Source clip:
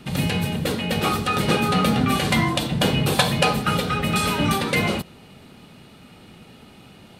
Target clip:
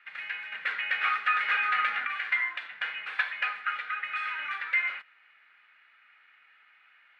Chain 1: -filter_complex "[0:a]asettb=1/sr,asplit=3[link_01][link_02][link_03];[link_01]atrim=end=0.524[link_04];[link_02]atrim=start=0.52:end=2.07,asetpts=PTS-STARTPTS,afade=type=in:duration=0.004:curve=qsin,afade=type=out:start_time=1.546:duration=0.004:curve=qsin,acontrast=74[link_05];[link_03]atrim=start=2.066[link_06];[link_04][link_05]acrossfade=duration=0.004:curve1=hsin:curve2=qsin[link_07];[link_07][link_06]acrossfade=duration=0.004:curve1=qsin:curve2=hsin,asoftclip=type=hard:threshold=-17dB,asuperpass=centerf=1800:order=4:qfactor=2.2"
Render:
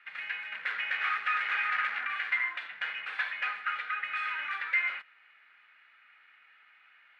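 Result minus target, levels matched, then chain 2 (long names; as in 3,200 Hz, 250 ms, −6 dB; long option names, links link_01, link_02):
hard clipping: distortion +16 dB
-filter_complex "[0:a]asettb=1/sr,asplit=3[link_01][link_02][link_03];[link_01]atrim=end=0.524[link_04];[link_02]atrim=start=0.52:end=2.07,asetpts=PTS-STARTPTS,afade=type=in:duration=0.004:curve=qsin,afade=type=out:start_time=1.546:duration=0.004:curve=qsin,acontrast=74[link_05];[link_03]atrim=start=2.066[link_06];[link_04][link_05]acrossfade=duration=0.004:curve1=hsin:curve2=qsin[link_07];[link_07][link_06]acrossfade=duration=0.004:curve1=qsin:curve2=hsin,asoftclip=type=hard:threshold=-8dB,asuperpass=centerf=1800:order=4:qfactor=2.2"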